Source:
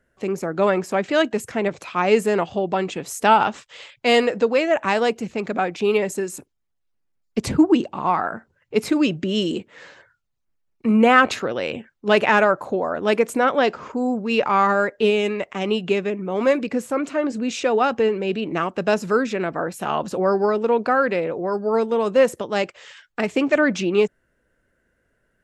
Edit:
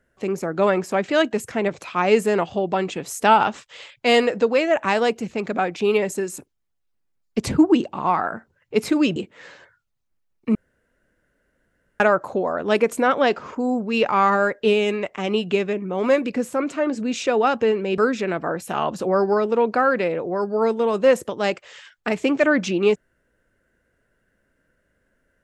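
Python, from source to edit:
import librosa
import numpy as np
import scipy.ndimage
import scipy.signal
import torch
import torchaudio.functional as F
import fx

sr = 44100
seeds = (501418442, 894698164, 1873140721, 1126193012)

y = fx.edit(x, sr, fx.cut(start_s=9.16, length_s=0.37),
    fx.room_tone_fill(start_s=10.92, length_s=1.45),
    fx.cut(start_s=18.35, length_s=0.75), tone=tone)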